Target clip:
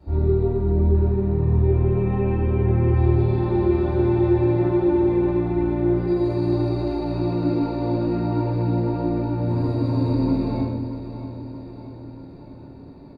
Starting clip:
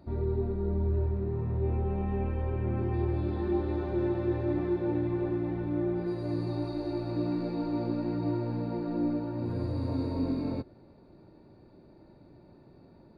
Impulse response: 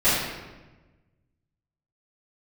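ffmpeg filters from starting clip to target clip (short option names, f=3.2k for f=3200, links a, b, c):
-filter_complex "[0:a]aecho=1:1:632|1264|1896|2528|3160|3792:0.251|0.146|0.0845|0.049|0.0284|0.0165[a];[1:a]atrim=start_sample=2205,asetrate=61740,aresample=44100[b];[a][b]afir=irnorm=-1:irlink=0,volume=-7dB"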